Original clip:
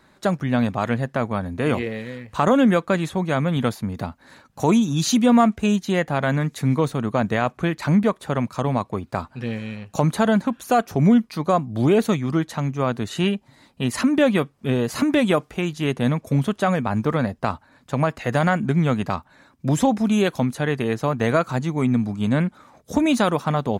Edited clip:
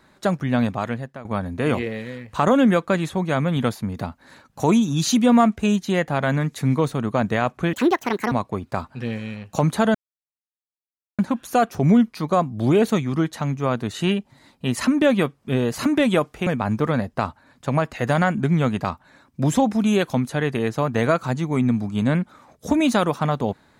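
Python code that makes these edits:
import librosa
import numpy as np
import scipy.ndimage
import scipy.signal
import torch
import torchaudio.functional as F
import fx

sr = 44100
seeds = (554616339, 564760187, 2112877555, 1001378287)

y = fx.edit(x, sr, fx.fade_out_to(start_s=0.66, length_s=0.59, floor_db=-19.0),
    fx.speed_span(start_s=7.73, length_s=0.99, speed=1.69),
    fx.insert_silence(at_s=10.35, length_s=1.24),
    fx.cut(start_s=15.63, length_s=1.09), tone=tone)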